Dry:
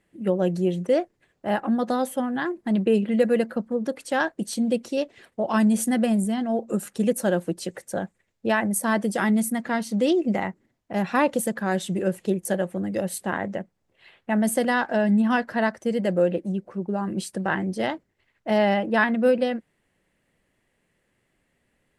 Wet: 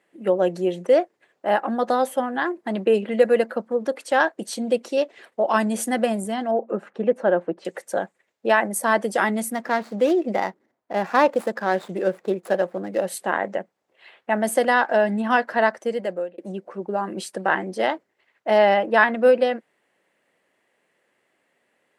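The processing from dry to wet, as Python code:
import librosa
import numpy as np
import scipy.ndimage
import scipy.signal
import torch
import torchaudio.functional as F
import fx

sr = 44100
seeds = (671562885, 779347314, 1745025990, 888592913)

y = fx.lowpass(x, sr, hz=1800.0, slope=12, at=(6.51, 7.65))
y = fx.median_filter(y, sr, points=15, at=(9.51, 13.06))
y = fx.edit(y, sr, fx.fade_out_span(start_s=15.78, length_s=0.6), tone=tone)
y = scipy.signal.sosfilt(scipy.signal.butter(2, 530.0, 'highpass', fs=sr, output='sos'), y)
y = fx.tilt_eq(y, sr, slope=-2.0)
y = y * 10.0 ** (6.0 / 20.0)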